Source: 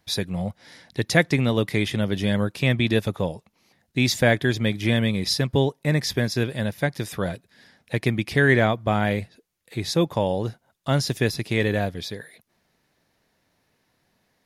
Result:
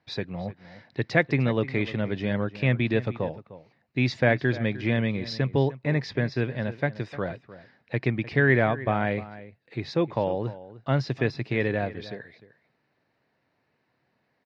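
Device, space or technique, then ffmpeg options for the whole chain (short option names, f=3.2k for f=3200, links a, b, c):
guitar cabinet: -filter_complex "[0:a]asettb=1/sr,asplit=3[a][b][c];[a]atrim=end=6.094[d];[b]atrim=start=6.09:end=6.71,asetpts=PTS-STARTPTS,afade=t=in:d=0.004:c=qsin,afade=t=out:st=0.616:d=0.004:c=qsin,lowpass=7k[e];[c]atrim=start=6.706[f];[d][e]acrossfade=d=0.004:c1=hsin:c2=qsin[g];[g][f]acrossfade=d=0.004:c1=qsin:c2=hsin,highpass=110,equalizer=f=130:t=q:w=4:g=4,equalizer=f=180:t=q:w=4:g=-5,equalizer=f=3.4k:t=q:w=4:g=-9,lowpass=f=4k:w=0.5412,lowpass=f=4k:w=1.3066,asplit=2[h][i];[i]adelay=303.2,volume=-16dB,highshelf=f=4k:g=-6.82[j];[h][j]amix=inputs=2:normalize=0,volume=-2.5dB"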